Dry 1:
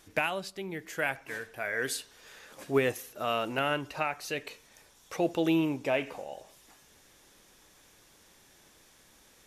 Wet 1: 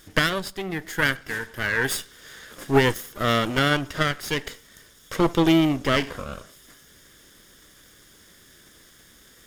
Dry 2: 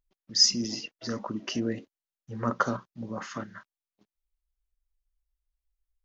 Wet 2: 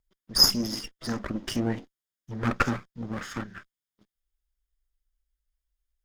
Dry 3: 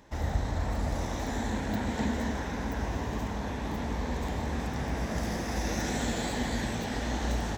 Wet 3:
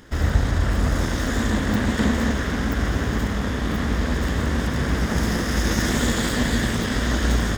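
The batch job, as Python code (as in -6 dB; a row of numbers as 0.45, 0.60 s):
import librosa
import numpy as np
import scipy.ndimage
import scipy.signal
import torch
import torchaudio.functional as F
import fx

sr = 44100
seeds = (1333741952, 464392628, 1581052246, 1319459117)

y = fx.lower_of_two(x, sr, delay_ms=0.59)
y = y * 10.0 ** (-6 / 20.0) / np.max(np.abs(y))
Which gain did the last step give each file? +9.0, +2.5, +10.5 dB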